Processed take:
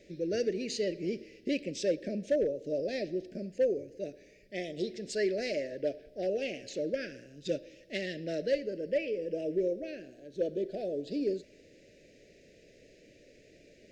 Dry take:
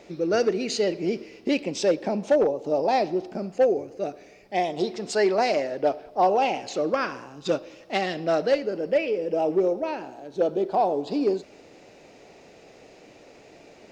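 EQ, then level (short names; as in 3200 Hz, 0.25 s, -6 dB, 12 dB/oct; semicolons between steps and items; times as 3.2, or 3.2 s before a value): elliptic band-stop 590–1700 Hz, stop band 50 dB; low shelf 65 Hz +11 dB; -7.5 dB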